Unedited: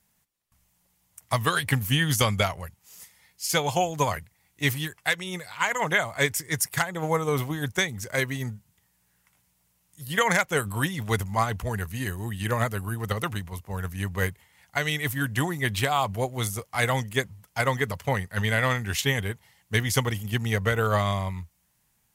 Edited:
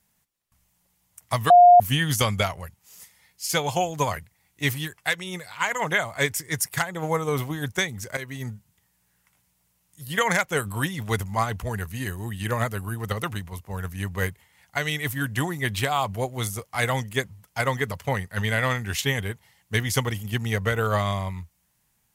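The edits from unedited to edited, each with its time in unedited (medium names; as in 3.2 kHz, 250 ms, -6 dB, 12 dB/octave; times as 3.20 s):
1.50–1.80 s: bleep 709 Hz -8 dBFS
8.17–8.50 s: fade in, from -13.5 dB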